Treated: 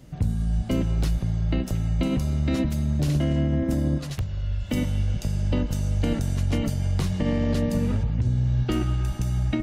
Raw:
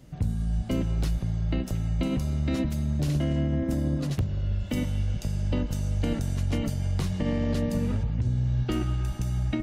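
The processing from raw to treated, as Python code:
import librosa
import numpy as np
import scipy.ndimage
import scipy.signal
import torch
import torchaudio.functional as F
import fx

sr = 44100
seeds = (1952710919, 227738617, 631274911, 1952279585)

y = fx.peak_eq(x, sr, hz=270.0, db=-11.0, octaves=2.3, at=(3.98, 4.69))
y = F.gain(torch.from_numpy(y), 3.0).numpy()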